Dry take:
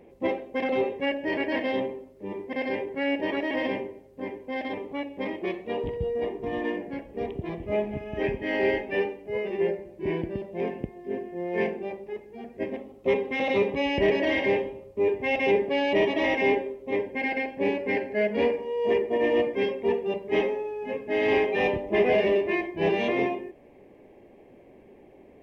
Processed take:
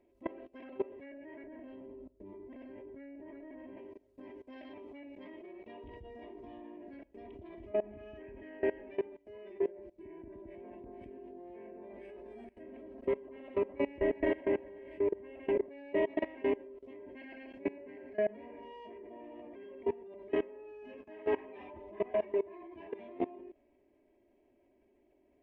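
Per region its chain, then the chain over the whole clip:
0:01.43–0:03.77: spectral tilt −3 dB per octave + downward compressor 4 to 1, threshold −27 dBFS
0:09.95–0:15.66: low-shelf EQ 78 Hz +4.5 dB + delay that swaps between a low-pass and a high-pass 219 ms, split 1,400 Hz, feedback 52%, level −5 dB + linearly interpolated sample-rate reduction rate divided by 4×
0:21.01–0:22.99: parametric band 960 Hz +7 dB 0.58 octaves + string-ensemble chorus
whole clip: comb filter 3.1 ms, depth 77%; treble cut that deepens with the level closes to 1,800 Hz, closed at −22.5 dBFS; output level in coarse steps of 21 dB; level −7 dB

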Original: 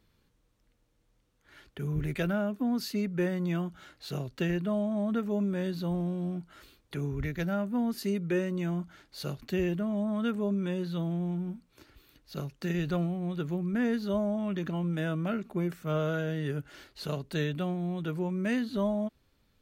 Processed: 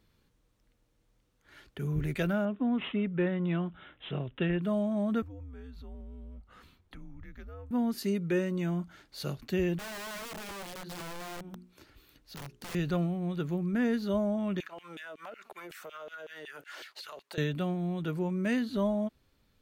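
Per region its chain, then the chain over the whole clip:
0:02.45–0:04.62: Butterworth low-pass 7,400 Hz 72 dB per octave + bad sample-rate conversion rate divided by 6×, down none, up filtered
0:05.22–0:07.71: high-shelf EQ 3,500 Hz −10.5 dB + downward compressor 3 to 1, threshold −47 dBFS + frequency shifter −120 Hz
0:09.78–0:12.75: mains-hum notches 60/120/180/240/300/360/420 Hz + wrap-around overflow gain 30.5 dB + downward compressor 2 to 1, threshold −45 dBFS
0:14.60–0:17.38: auto-filter high-pass saw down 5.4 Hz 410–3,000 Hz + downward compressor 16 to 1, threshold −44 dBFS + leveller curve on the samples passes 1
whole clip: no processing

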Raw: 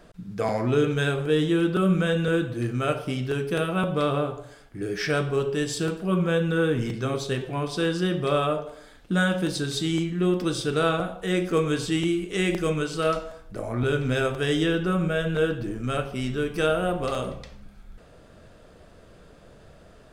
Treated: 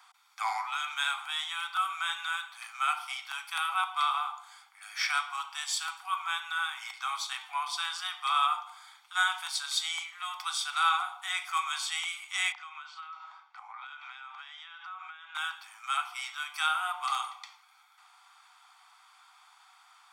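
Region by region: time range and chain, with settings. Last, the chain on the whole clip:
0:12.52–0:15.35: Butterworth high-pass 650 Hz + downward compressor 20 to 1, threshold −39 dBFS + high-frequency loss of the air 200 metres
whole clip: Chebyshev high-pass filter 750 Hz, order 8; comb filter 0.9 ms, depth 59%

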